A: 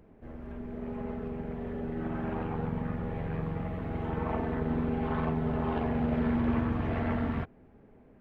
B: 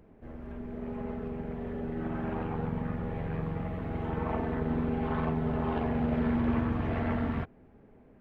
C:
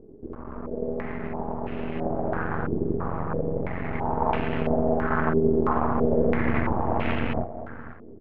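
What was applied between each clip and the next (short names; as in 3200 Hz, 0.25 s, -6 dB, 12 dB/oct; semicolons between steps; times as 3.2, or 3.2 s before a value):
nothing audible
half-wave rectifier; feedback echo 0.494 s, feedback 29%, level -14 dB; stepped low-pass 3 Hz 390–2700 Hz; gain +7 dB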